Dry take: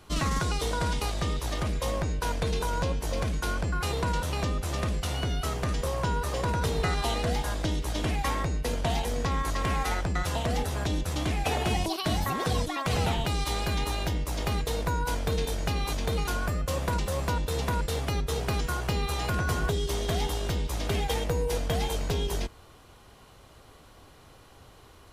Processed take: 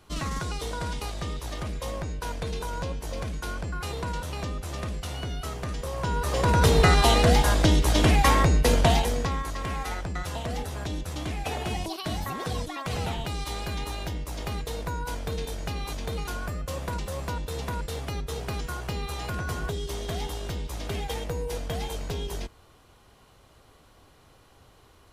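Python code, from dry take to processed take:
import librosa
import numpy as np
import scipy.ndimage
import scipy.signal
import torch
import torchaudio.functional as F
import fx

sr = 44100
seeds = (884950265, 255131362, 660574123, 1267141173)

y = fx.gain(x, sr, db=fx.line((5.86, -3.5), (6.67, 9.0), (8.81, 9.0), (9.49, -3.5)))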